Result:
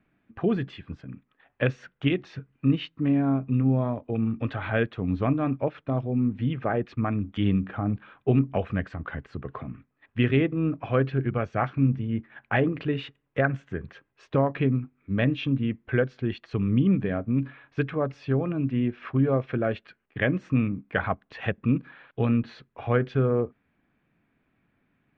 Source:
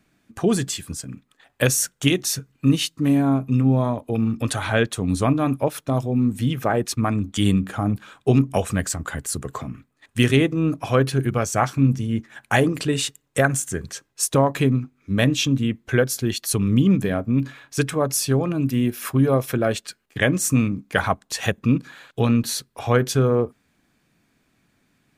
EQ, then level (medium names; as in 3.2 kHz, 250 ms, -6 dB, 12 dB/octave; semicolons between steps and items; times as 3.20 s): low-pass 2.8 kHz 24 dB/octave; dynamic bell 940 Hz, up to -4 dB, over -39 dBFS, Q 3.1; distance through air 73 m; -4.5 dB